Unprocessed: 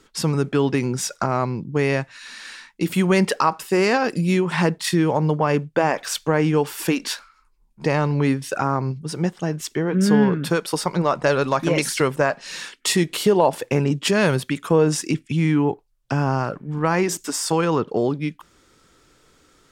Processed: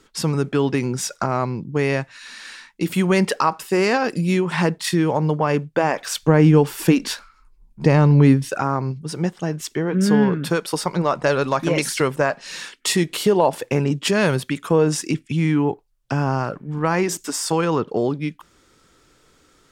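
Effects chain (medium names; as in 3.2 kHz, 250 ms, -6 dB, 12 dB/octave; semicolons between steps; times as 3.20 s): 6.23–8.49 s: bass shelf 330 Hz +10.5 dB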